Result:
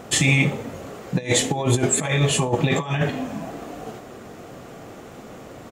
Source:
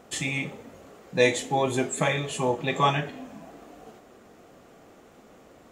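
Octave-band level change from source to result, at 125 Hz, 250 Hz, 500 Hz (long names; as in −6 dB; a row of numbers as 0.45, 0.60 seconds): +11.0, +7.5, +1.5 decibels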